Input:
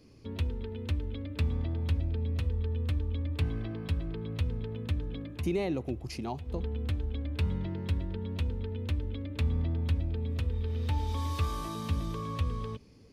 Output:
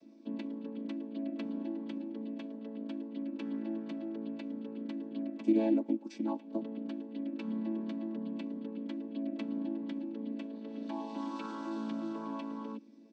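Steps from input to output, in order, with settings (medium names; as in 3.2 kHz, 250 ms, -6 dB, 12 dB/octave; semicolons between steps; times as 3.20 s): vocoder on a held chord major triad, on A3; comb 3.4 ms, depth 36%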